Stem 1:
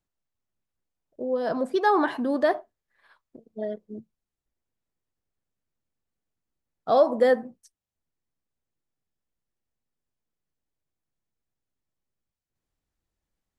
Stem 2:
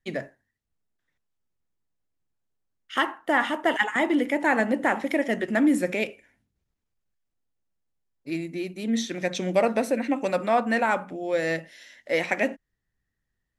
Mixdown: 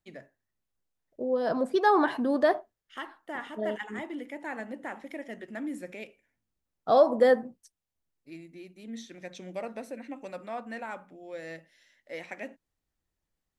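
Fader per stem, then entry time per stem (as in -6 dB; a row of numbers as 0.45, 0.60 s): -1.0, -15.0 dB; 0.00, 0.00 s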